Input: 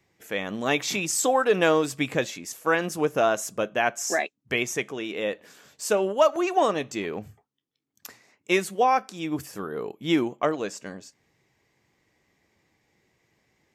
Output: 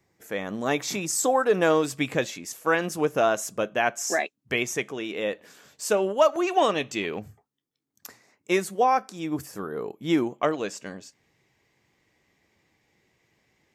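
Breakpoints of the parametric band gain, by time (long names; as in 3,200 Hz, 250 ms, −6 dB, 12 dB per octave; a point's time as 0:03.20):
parametric band 2,900 Hz 0.95 octaves
−7 dB
from 0:01.70 −0.5 dB
from 0:06.49 +6.5 dB
from 0:07.20 −5 dB
from 0:10.36 +2.5 dB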